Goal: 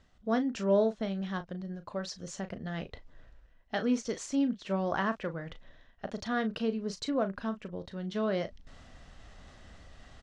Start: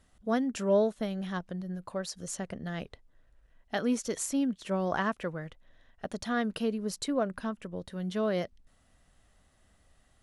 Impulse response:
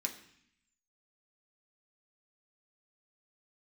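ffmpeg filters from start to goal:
-filter_complex "[0:a]lowpass=f=6.2k:w=0.5412,lowpass=f=6.2k:w=1.3066,areverse,acompressor=mode=upward:threshold=-37dB:ratio=2.5,areverse,asplit=2[a][b];[b]adelay=36,volume=-11dB[c];[a][c]amix=inputs=2:normalize=0,volume=-1dB"

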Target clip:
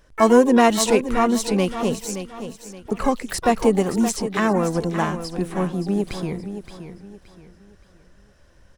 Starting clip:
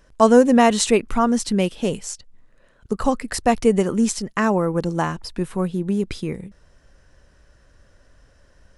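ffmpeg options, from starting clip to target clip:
-filter_complex "[0:a]asplit=3[a][b][c];[b]asetrate=66075,aresample=44100,atempo=0.66742,volume=-16dB[d];[c]asetrate=88200,aresample=44100,atempo=0.5,volume=-14dB[e];[a][d][e]amix=inputs=3:normalize=0,aecho=1:1:572|1144|1716|2288:0.299|0.0985|0.0325|0.0107,volume=-1dB"

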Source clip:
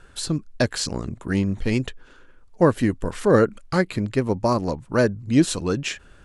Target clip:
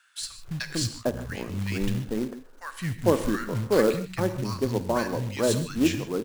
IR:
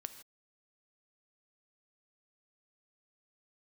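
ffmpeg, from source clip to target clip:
-filter_complex "[0:a]acrossover=split=180|1300[a][b][c];[a]adelay=210[d];[b]adelay=450[e];[d][e][c]amix=inputs=3:normalize=0[f];[1:a]atrim=start_sample=2205,afade=t=out:st=0.21:d=0.01,atrim=end_sample=9702[g];[f][g]afir=irnorm=-1:irlink=0,acrusher=bits=4:mode=log:mix=0:aa=0.000001"

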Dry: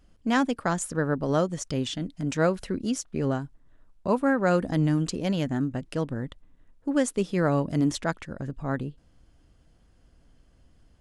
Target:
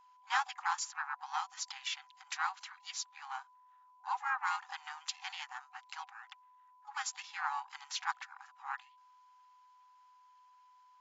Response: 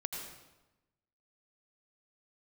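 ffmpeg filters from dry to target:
-filter_complex "[0:a]asplit=4[a][b][c][d];[b]asetrate=29433,aresample=44100,atempo=1.49831,volume=-8dB[e];[c]asetrate=35002,aresample=44100,atempo=1.25992,volume=-4dB[f];[d]asetrate=66075,aresample=44100,atempo=0.66742,volume=-16dB[g];[a][e][f][g]amix=inputs=4:normalize=0,aeval=exprs='val(0)+0.00178*sin(2*PI*1000*n/s)':c=same,afftfilt=real='re*between(b*sr/4096,750,7500)':imag='im*between(b*sr/4096,750,7500)':win_size=4096:overlap=0.75,volume=-5.5dB"

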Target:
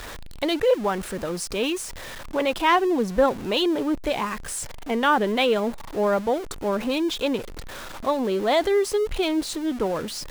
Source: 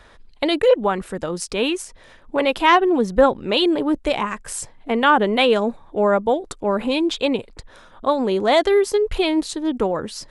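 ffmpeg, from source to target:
-af "aeval=exprs='val(0)+0.5*0.0473*sgn(val(0))':c=same,volume=-5.5dB"

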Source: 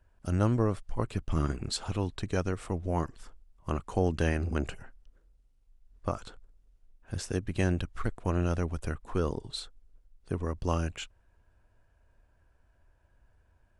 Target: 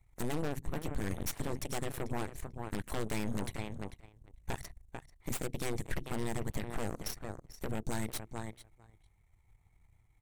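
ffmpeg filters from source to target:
-filter_complex "[0:a]bandreject=f=50:t=h:w=6,bandreject=f=100:t=h:w=6,bandreject=f=150:t=h:w=6,bandreject=f=200:t=h:w=6,bandreject=f=250:t=h:w=6,asplit=2[a][b];[b]adelay=600,lowpass=f=4.1k:p=1,volume=-13.5dB,asplit=2[c][d];[d]adelay=600,lowpass=f=4.1k:p=1,volume=0.16[e];[a][c][e]amix=inputs=3:normalize=0,aeval=exprs='0.112*(abs(mod(val(0)/0.112+3,4)-2)-1)':c=same,equalizer=f=160:t=o:w=0.67:g=-8,equalizer=f=400:t=o:w=0.67:g=-10,equalizer=f=1k:t=o:w=0.67:g=-10,equalizer=f=2.5k:t=o:w=0.67:g=-6,equalizer=f=6.3k:t=o:w=0.67:g=6,acompressor=threshold=-41dB:ratio=2.5,bandreject=f=3.6k:w=5.2,aeval=exprs='0.0501*(cos(1*acos(clip(val(0)/0.0501,-1,1)))-cos(1*PI/2))+0.0224*(cos(8*acos(clip(val(0)/0.0501,-1,1)))-cos(8*PI/2))':c=same,asetrate=59535,aresample=44100,volume=-1dB"

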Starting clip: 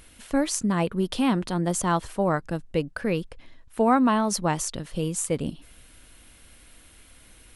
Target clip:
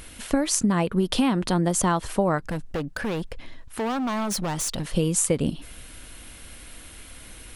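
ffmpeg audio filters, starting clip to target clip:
-filter_complex "[0:a]acompressor=threshold=-26dB:ratio=20,asettb=1/sr,asplit=3[a][b][c];[a]atrim=end=2.384[d];[b]atrim=start=2.38:end=4.88,asetpts=PTS-STARTPTS,afade=t=in:d=0.004:c=qsin,afade=t=out:st=2.496:d=0.004:c=qsin,volume=33dB,asoftclip=hard,volume=-33dB[e];[c]atrim=start=4.876[f];[d][e]acrossfade=d=0.004:c1=hsin:c2=qsin[g];[g][f]acrossfade=d=0.004:c1=qsin:c2=hsin,volume=8.5dB"

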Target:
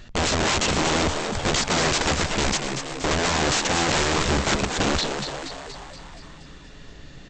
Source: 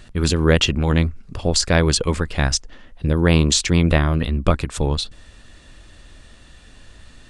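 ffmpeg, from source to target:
-filter_complex "[0:a]aresample=16000,aeval=exprs='(mod(7.5*val(0)+1,2)-1)/7.5':c=same,aresample=44100,asplit=9[a][b][c][d][e][f][g][h][i];[b]adelay=237,afreqshift=130,volume=-7dB[j];[c]adelay=474,afreqshift=260,volume=-11.6dB[k];[d]adelay=711,afreqshift=390,volume=-16.2dB[l];[e]adelay=948,afreqshift=520,volume=-20.7dB[m];[f]adelay=1185,afreqshift=650,volume=-25.3dB[n];[g]adelay=1422,afreqshift=780,volume=-29.9dB[o];[h]adelay=1659,afreqshift=910,volume=-34.5dB[p];[i]adelay=1896,afreqshift=1040,volume=-39.1dB[q];[a][j][k][l][m][n][o][p][q]amix=inputs=9:normalize=0"

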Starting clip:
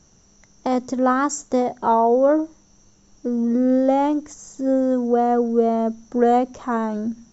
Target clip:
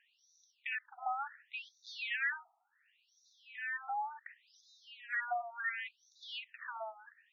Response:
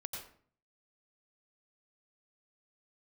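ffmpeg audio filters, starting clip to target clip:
-filter_complex "[0:a]asoftclip=type=hard:threshold=-22.5dB,asplit=3[a][b][c];[a]bandpass=f=530:t=q:w=8,volume=0dB[d];[b]bandpass=f=1.84k:t=q:w=8,volume=-6dB[e];[c]bandpass=f=2.48k:t=q:w=8,volume=-9dB[f];[d][e][f]amix=inputs=3:normalize=0,afftfilt=real='re*between(b*sr/1024,930*pow(5000/930,0.5+0.5*sin(2*PI*0.69*pts/sr))/1.41,930*pow(5000/930,0.5+0.5*sin(2*PI*0.69*pts/sr))*1.41)':imag='im*between(b*sr/1024,930*pow(5000/930,0.5+0.5*sin(2*PI*0.69*pts/sr))/1.41,930*pow(5000/930,0.5+0.5*sin(2*PI*0.69*pts/sr))*1.41)':win_size=1024:overlap=0.75,volume=14dB"

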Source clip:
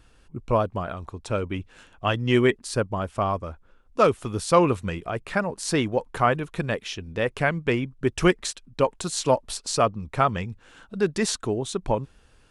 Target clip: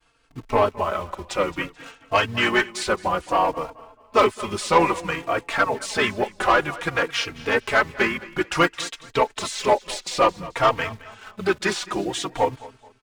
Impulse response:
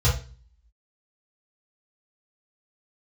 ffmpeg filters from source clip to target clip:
-filter_complex "[0:a]deesser=0.7,agate=range=-33dB:threshold=-48dB:ratio=3:detection=peak,acrossover=split=480[a][b];[a]acompressor=threshold=-32dB:ratio=3[c];[c][b]amix=inputs=2:normalize=0,asplit=4[d][e][f][g];[e]asetrate=22050,aresample=44100,atempo=2,volume=-10dB[h];[f]asetrate=29433,aresample=44100,atempo=1.49831,volume=-15dB[i];[g]asetrate=37084,aresample=44100,atempo=1.18921,volume=-7dB[j];[d][h][i][j]amix=inputs=4:normalize=0,asplit=2[k][l];[l]acrusher=bits=6:mix=0:aa=0.000001,volume=-10dB[m];[k][m]amix=inputs=2:normalize=0,asplit=2[n][o];[o]highpass=f=720:p=1,volume=15dB,asoftclip=type=tanh:threshold=-4dB[p];[n][p]amix=inputs=2:normalize=0,lowpass=f=6.6k:p=1,volume=-6dB,aecho=1:1:208|416|624:0.112|0.0393|0.0137,asetrate=42336,aresample=44100,asplit=2[q][r];[r]adelay=3.8,afreqshift=-0.57[s];[q][s]amix=inputs=2:normalize=1"

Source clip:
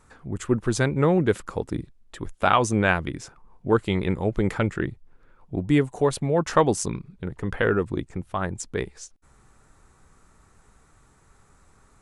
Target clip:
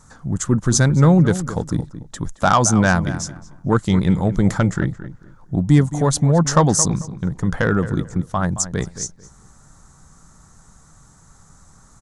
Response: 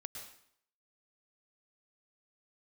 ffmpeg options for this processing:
-filter_complex "[0:a]acontrast=73,equalizer=f=160:t=o:w=0.67:g=7,equalizer=f=400:t=o:w=0.67:g=-8,equalizer=f=2.5k:t=o:w=0.67:g=-11,equalizer=f=6.3k:t=o:w=0.67:g=10,asplit=2[a][b];[b]adelay=221,lowpass=f=2.3k:p=1,volume=-13dB,asplit=2[c][d];[d]adelay=221,lowpass=f=2.3k:p=1,volume=0.24,asplit=2[e][f];[f]adelay=221,lowpass=f=2.3k:p=1,volume=0.24[g];[a][c][e][g]amix=inputs=4:normalize=0"

